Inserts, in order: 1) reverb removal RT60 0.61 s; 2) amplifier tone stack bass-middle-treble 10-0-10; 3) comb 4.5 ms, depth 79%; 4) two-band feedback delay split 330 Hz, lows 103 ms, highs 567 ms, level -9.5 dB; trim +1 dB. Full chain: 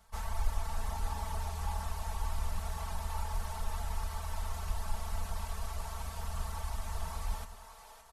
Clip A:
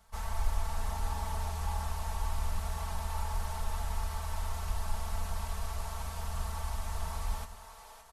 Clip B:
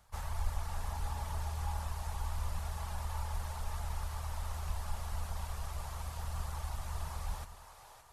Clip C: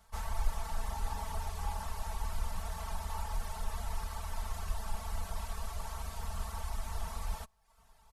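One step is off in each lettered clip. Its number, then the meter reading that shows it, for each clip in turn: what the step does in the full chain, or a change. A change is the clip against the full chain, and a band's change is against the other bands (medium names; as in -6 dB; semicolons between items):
1, loudness change +2.0 LU; 3, 125 Hz band +3.0 dB; 4, echo-to-direct -8.0 dB to none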